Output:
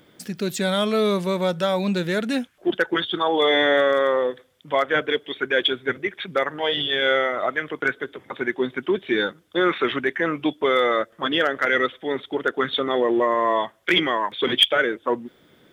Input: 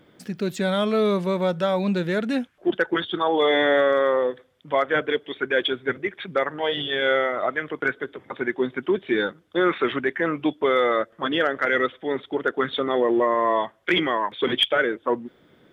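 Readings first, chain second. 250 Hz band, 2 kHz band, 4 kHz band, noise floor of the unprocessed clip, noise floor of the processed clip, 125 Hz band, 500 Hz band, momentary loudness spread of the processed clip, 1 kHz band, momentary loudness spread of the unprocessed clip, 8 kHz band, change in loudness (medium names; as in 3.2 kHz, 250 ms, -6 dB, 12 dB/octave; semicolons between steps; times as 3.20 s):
0.0 dB, +2.0 dB, +4.5 dB, -59 dBFS, -57 dBFS, 0.0 dB, 0.0 dB, 9 LU, +1.0 dB, 7 LU, no reading, +1.0 dB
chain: treble shelf 3.8 kHz +10.5 dB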